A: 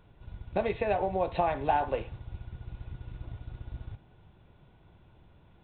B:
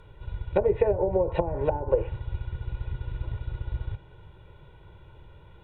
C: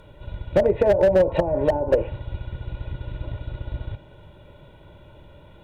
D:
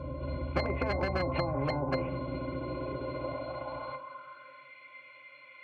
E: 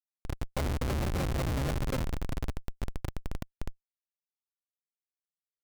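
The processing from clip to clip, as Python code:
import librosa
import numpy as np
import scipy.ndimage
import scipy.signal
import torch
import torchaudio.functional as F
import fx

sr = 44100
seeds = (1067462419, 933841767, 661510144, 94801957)

y1 = fx.env_lowpass_down(x, sr, base_hz=370.0, full_db=-23.5)
y1 = y1 + 0.74 * np.pad(y1, (int(2.1 * sr / 1000.0), 0))[:len(y1)]
y1 = y1 * librosa.db_to_amplitude(5.5)
y2 = fx.high_shelf(y1, sr, hz=2500.0, db=9.0)
y2 = fx.small_body(y2, sr, hz=(250.0, 590.0), ring_ms=35, db=14)
y2 = fx.slew_limit(y2, sr, full_power_hz=130.0)
y3 = fx.octave_resonator(y2, sr, note='C', decay_s=0.16)
y3 = fx.filter_sweep_highpass(y3, sr, from_hz=76.0, to_hz=2100.0, start_s=1.06, end_s=4.76, q=4.4)
y3 = fx.spectral_comp(y3, sr, ratio=4.0)
y3 = y3 * librosa.db_to_amplitude(-2.5)
y4 = fx.schmitt(y3, sr, flips_db=-27.5)
y4 = y4 * librosa.db_to_amplitude(5.5)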